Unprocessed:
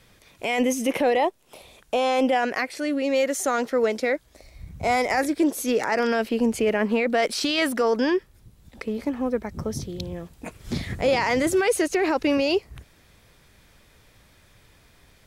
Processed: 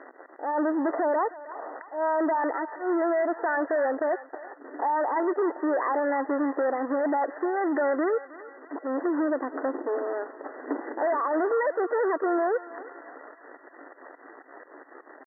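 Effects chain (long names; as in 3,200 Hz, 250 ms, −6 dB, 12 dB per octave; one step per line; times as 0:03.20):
adaptive Wiener filter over 9 samples
downward compressor 4 to 1, threshold −36 dBFS, peak gain reduction 16 dB
leveller curve on the samples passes 5
volume swells 111 ms
pitch shifter +3.5 semitones
linear-phase brick-wall band-pass 260–2,000 Hz
on a send: feedback echo with a high-pass in the loop 316 ms, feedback 72%, high-pass 1,100 Hz, level −11.5 dB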